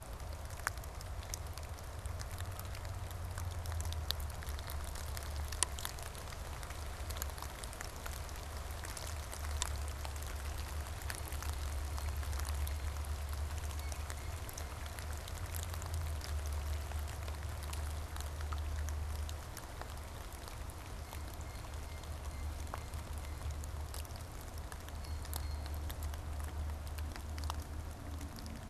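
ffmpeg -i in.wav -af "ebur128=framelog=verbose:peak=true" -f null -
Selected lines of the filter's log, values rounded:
Integrated loudness:
  I:         -43.1 LUFS
  Threshold: -53.1 LUFS
Loudness range:
  LRA:         3.8 LU
  Threshold: -63.0 LUFS
  LRA low:   -45.2 LUFS
  LRA high:  -41.4 LUFS
True peak:
  Peak:       -8.3 dBFS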